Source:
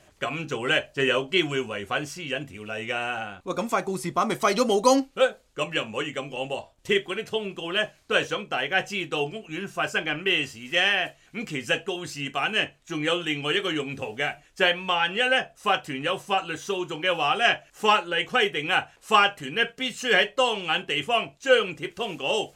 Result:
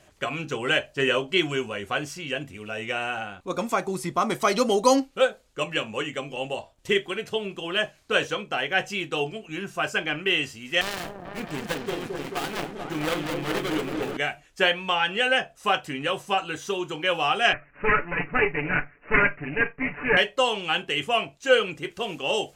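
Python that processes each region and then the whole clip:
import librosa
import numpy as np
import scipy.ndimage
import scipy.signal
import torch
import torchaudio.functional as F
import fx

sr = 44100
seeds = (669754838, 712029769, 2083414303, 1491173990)

y = fx.chain(x, sr, fx.dead_time(dead_ms=0.25),
    fx.echo_opening(ms=219, hz=750, octaves=1, feedback_pct=70, wet_db=-3), at=(10.81, 14.17))
y = fx.chain(y, sr, fx.lower_of_two(delay_ms=0.56),
    fx.comb(ms=6.9, depth=0.73),
    fx.resample_bad(factor=8, down='none', up='filtered'), at=(17.53, 20.17))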